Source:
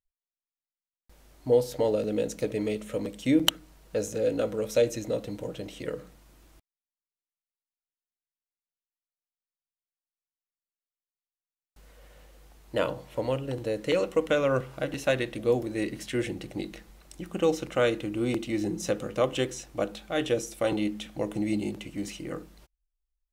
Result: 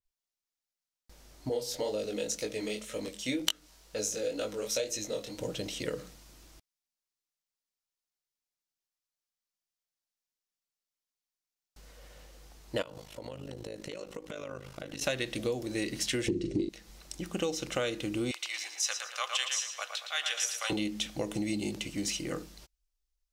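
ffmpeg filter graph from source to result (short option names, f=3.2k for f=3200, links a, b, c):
-filter_complex "[0:a]asettb=1/sr,asplit=3[a][b][c];[a]atrim=end=1.494[d];[b]atrim=start=1.49:end=5.38,asetpts=PTS-STARTPTS,afade=t=in:d=0.004:c=qsin,afade=t=out:st=3.886:d=0.004:c=qsin,equalizer=f=110:w=0.43:g=-8.5,flanger=delay=19:depth=5.4:speed=2[e];[c]atrim=start=5.376[f];[d][e]acrossfade=d=0.004:c1=hsin:c2=qsin[g];[g][f]acrossfade=d=0.004:c1=qsin:c2=hsin,asettb=1/sr,asplit=3[h][i][j];[h]atrim=end=12.824[k];[i]atrim=start=12.82:end=15.02,asetpts=PTS-STARTPTS,afade=t=in:d=0.004:c=qsin,afade=t=out:st=2.196:d=0.004:c=qsin,acompressor=threshold=-35dB:ratio=10:attack=3.2:release=140:knee=1:detection=peak,tremolo=f=52:d=0.857[l];[j]atrim=start=15.016[m];[k][l]acrossfade=d=0.004:c1=hsin:c2=qsin[n];[n][m]acrossfade=d=0.004:c1=qsin:c2=hsin,asettb=1/sr,asplit=3[o][p][q];[o]atrim=end=16.284[r];[p]atrim=start=16.28:end=16.69,asetpts=PTS-STARTPTS,afade=t=in:d=0.004:c=qsin,afade=t=out:st=0.406:d=0.004:c=qsin,lowpass=f=8.3k:w=0.5412,lowpass=f=8.3k:w=1.3066,lowshelf=f=520:t=q:w=3:g=12,asplit=2[s][t];[t]adelay=41,volume=-7.5dB[u];[s][u]amix=inputs=2:normalize=0,atrim=end_sample=18081[v];[q]atrim=start=16.686[w];[r][v]acrossfade=d=0.004:c1=hsin:c2=qsin[x];[x][w]acrossfade=d=0.004:c1=qsin:c2=hsin,asettb=1/sr,asplit=3[y][z][aa];[y]atrim=end=18.314[ab];[z]atrim=start=18.31:end=20.7,asetpts=PTS-STARTPTS,afade=t=in:d=0.004:c=qsin,afade=t=out:st=2.386:d=0.004:c=qsin,highpass=f=980:w=0.5412,highpass=f=980:w=1.3066,highshelf=f=6.3k:g=-5,asplit=2[ac][ad];[ad]adelay=114,lowpass=f=4.5k:p=1,volume=-5dB,asplit=2[ae][af];[af]adelay=114,lowpass=f=4.5k:p=1,volume=0.47,asplit=2[ag][ah];[ah]adelay=114,lowpass=f=4.5k:p=1,volume=0.47,asplit=2[ai][aj];[aj]adelay=114,lowpass=f=4.5k:p=1,volume=0.47,asplit=2[ak][al];[al]adelay=114,lowpass=f=4.5k:p=1,volume=0.47,asplit=2[am][an];[an]adelay=114,lowpass=f=4.5k:p=1,volume=0.47[ao];[ac][ae][ag][ai][ak][am][ao]amix=inputs=7:normalize=0,atrim=end_sample=105399[ap];[aa]atrim=start=20.696[aq];[ab][ap]acrossfade=d=0.004:c1=hsin:c2=qsin[ar];[ar][aq]acrossfade=d=0.004:c1=qsin:c2=hsin,equalizer=f=5.4k:w=1.1:g=7,acompressor=threshold=-29dB:ratio=6,adynamicequalizer=threshold=0.00398:dfrequency=2100:dqfactor=0.7:tfrequency=2100:tqfactor=0.7:attack=5:release=100:ratio=0.375:range=2.5:mode=boostabove:tftype=highshelf"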